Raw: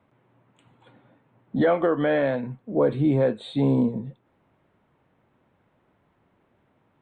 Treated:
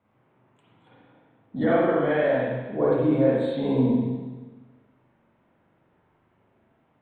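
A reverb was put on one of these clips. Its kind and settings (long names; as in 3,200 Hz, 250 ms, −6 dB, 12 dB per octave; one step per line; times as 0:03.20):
spring reverb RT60 1.3 s, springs 39/48 ms, chirp 65 ms, DRR −7.5 dB
level −7.5 dB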